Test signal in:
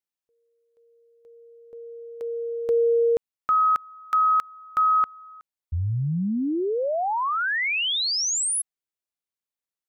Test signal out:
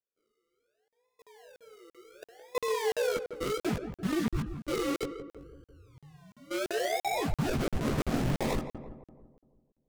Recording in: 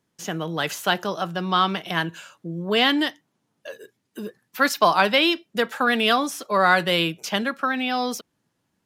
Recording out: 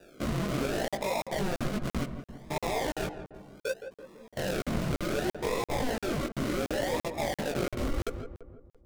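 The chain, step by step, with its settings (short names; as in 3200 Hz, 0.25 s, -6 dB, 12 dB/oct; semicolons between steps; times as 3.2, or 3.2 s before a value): spectral swells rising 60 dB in 0.98 s; notch 2700 Hz, Q 28; reverb removal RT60 0.64 s; bell 630 Hz +14.5 dB 0.7 oct; notches 50/100/150 Hz; wow and flutter 140 cents; decimation with a swept rate 41×, swing 60% 0.67 Hz; level quantiser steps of 24 dB; chorus voices 6, 0.52 Hz, delay 18 ms, depth 4.6 ms; darkening echo 0.167 s, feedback 54%, low-pass 1300 Hz, level -9 dB; crackling interface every 0.34 s, samples 2048, zero, from 0.88; Doppler distortion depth 0.37 ms; gain -3.5 dB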